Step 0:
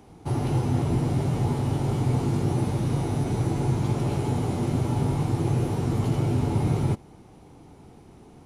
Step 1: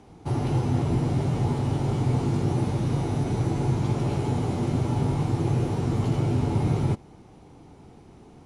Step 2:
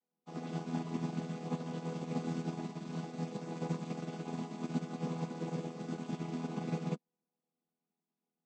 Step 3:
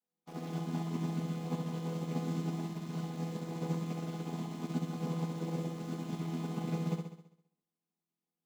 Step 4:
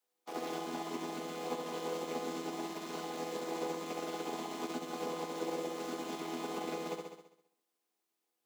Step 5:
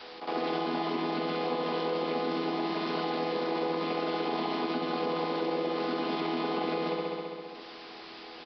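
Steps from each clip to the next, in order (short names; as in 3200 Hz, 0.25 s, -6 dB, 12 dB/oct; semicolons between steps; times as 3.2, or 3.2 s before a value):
LPF 8700 Hz 12 dB/oct
chord vocoder major triad, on E3; tilt +4 dB/oct; upward expander 2.5:1, over -53 dBFS; gain +1 dB
in parallel at -5.5 dB: requantised 8-bit, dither none; on the sum: flutter echo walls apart 11.4 m, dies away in 0.73 s; gain -4.5 dB
compressor 2.5:1, threshold -36 dBFS, peak gain reduction 5.5 dB; HPF 330 Hz 24 dB/oct; gain +8 dB
reverse echo 60 ms -23 dB; downsampling 11025 Hz; fast leveller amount 70%; gain +5 dB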